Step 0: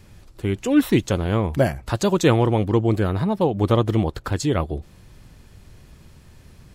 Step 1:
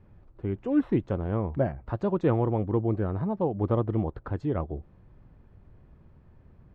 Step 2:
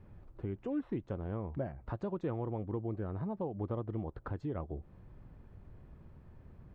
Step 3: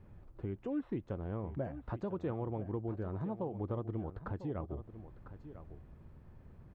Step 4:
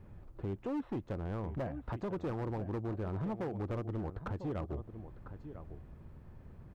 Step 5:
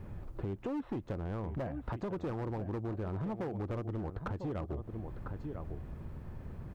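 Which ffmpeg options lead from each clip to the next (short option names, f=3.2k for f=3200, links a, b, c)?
-af "lowpass=1.2k,volume=-7dB"
-af "acompressor=threshold=-39dB:ratio=2.5"
-af "aecho=1:1:1000:0.237,volume=-1dB"
-af "asoftclip=type=hard:threshold=-35.5dB,volume=3dB"
-af "acompressor=threshold=-44dB:ratio=4,volume=8dB"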